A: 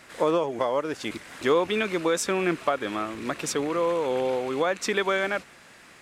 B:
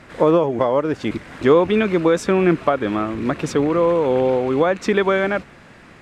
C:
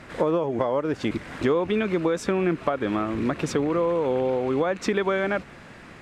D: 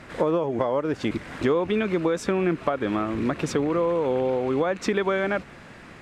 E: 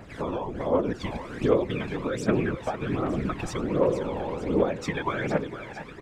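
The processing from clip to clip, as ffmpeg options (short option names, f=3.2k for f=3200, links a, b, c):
-af "lowpass=f=2.1k:p=1,lowshelf=f=260:g=10.5,volume=6dB"
-af "acompressor=threshold=-22dB:ratio=3"
-af anull
-af "afftfilt=real='hypot(re,im)*cos(2*PI*random(0))':imag='hypot(re,im)*sin(2*PI*random(1))':win_size=512:overlap=0.75,aecho=1:1:457|914|1371|1828|2285|2742:0.355|0.174|0.0852|0.0417|0.0205|0.01,aphaser=in_gain=1:out_gain=1:delay=1.3:decay=0.6:speed=1.3:type=triangular"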